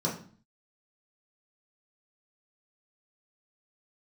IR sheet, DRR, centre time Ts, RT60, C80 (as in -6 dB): -5.0 dB, 26 ms, 0.45 s, 12.5 dB